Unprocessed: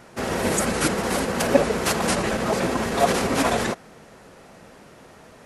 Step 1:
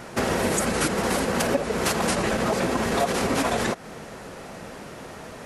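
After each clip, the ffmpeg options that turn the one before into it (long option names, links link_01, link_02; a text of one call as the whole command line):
ffmpeg -i in.wav -af "acompressor=threshold=-29dB:ratio=6,volume=8dB" out.wav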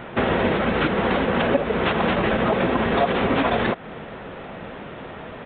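ffmpeg -i in.wav -af "aresample=8000,aresample=44100,volume=3.5dB" out.wav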